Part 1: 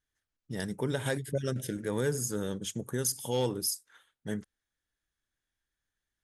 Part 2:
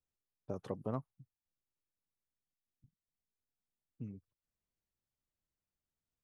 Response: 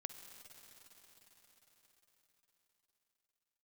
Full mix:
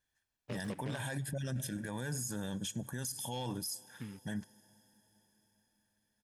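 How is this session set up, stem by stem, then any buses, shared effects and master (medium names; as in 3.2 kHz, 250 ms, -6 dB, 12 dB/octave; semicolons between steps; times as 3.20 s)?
-1.0 dB, 0.00 s, send -15 dB, comb 1.2 ms, depth 70%; Chebyshev shaper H 2 -32 dB, 6 -44 dB, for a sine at -14.5 dBFS
+1.5 dB, 0.00 s, no send, delay time shaken by noise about 1.8 kHz, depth 0.11 ms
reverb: on, RT60 5.2 s, pre-delay 45 ms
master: bass shelf 70 Hz -10.5 dB; peak limiter -29.5 dBFS, peak gain reduction 13.5 dB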